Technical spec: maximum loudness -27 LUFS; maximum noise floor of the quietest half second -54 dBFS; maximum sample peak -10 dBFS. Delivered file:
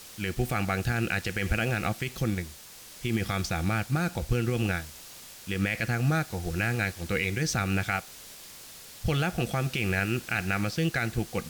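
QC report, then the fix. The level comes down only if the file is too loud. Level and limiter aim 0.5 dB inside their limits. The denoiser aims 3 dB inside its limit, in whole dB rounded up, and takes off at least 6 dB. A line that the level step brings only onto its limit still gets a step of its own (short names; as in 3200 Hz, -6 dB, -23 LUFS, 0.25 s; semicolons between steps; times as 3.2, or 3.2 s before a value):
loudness -29.0 LUFS: OK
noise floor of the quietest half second -47 dBFS: fail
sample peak -15.5 dBFS: OK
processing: denoiser 10 dB, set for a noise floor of -47 dBFS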